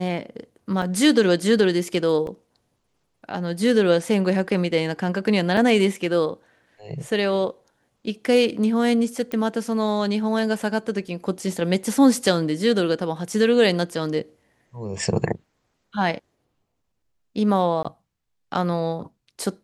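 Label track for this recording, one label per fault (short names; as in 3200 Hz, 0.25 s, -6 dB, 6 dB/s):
0.820000	0.820000	gap 3 ms
2.270000	2.270000	gap 2 ms
5.570000	5.570000	gap 3 ms
9.320000	9.320000	pop -16 dBFS
11.080000	11.080000	gap 2.4 ms
17.830000	17.850000	gap 16 ms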